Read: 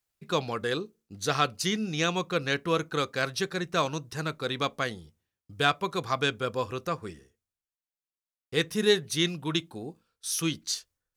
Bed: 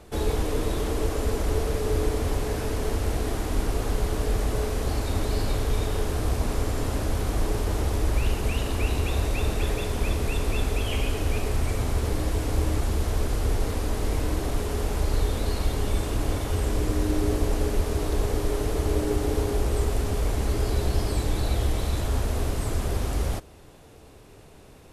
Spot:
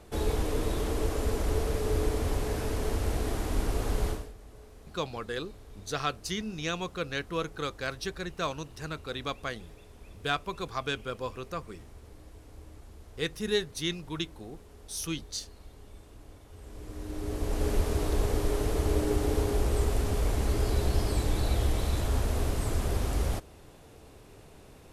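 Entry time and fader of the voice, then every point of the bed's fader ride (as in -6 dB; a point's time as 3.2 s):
4.65 s, -5.5 dB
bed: 4.1 s -3.5 dB
4.34 s -24.5 dB
16.49 s -24.5 dB
17.7 s -2.5 dB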